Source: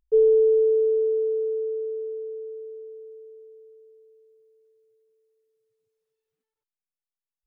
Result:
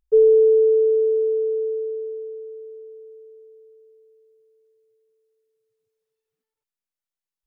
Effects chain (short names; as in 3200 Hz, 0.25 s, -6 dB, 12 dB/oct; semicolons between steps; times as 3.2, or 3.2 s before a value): dynamic EQ 340 Hz, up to +6 dB, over -35 dBFS, Q 1.5